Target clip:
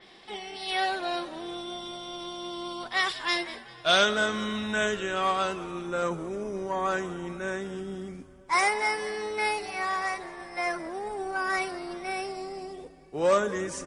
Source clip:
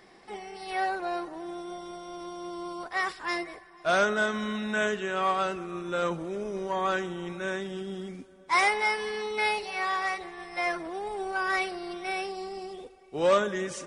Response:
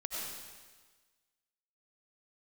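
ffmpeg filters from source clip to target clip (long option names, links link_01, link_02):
-filter_complex "[0:a]asetnsamples=nb_out_samples=441:pad=0,asendcmd='4.11 equalizer g 3.5;5.86 equalizer g -6',equalizer=frequency=3400:width=1.8:gain=14,asplit=6[link_01][link_02][link_03][link_04][link_05][link_06];[link_02]adelay=197,afreqshift=-110,volume=-18.5dB[link_07];[link_03]adelay=394,afreqshift=-220,volume=-23.7dB[link_08];[link_04]adelay=591,afreqshift=-330,volume=-28.9dB[link_09];[link_05]adelay=788,afreqshift=-440,volume=-34.1dB[link_10];[link_06]adelay=985,afreqshift=-550,volume=-39.3dB[link_11];[link_01][link_07][link_08][link_09][link_10][link_11]amix=inputs=6:normalize=0,adynamicequalizer=threshold=0.00794:dfrequency=4800:dqfactor=0.7:tfrequency=4800:tqfactor=0.7:attack=5:release=100:ratio=0.375:range=2.5:mode=boostabove:tftype=highshelf"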